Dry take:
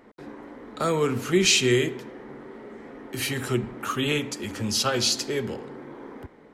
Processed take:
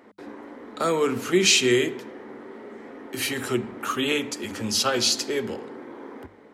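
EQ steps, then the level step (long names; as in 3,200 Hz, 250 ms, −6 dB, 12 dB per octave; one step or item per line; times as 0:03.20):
high-pass filter 90 Hz 12 dB per octave
parametric band 140 Hz −11 dB 0.44 octaves
mains-hum notches 50/100/150/200 Hz
+1.5 dB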